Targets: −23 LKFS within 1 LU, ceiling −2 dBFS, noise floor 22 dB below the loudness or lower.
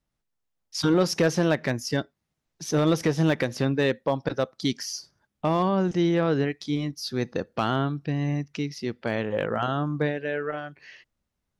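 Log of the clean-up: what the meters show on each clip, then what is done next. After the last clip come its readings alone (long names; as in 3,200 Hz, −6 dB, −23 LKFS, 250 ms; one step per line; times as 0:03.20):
share of clipped samples 0.2%; peaks flattened at −13.5 dBFS; integrated loudness −26.5 LKFS; sample peak −13.5 dBFS; target loudness −23.0 LKFS
→ clipped peaks rebuilt −13.5 dBFS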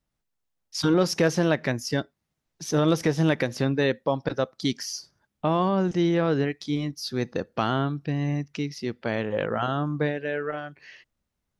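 share of clipped samples 0.0%; integrated loudness −26.0 LKFS; sample peak −9.0 dBFS; target loudness −23.0 LKFS
→ level +3 dB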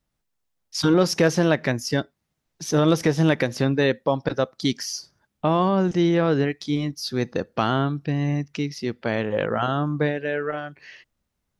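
integrated loudness −23.0 LKFS; sample peak −6.0 dBFS; background noise floor −78 dBFS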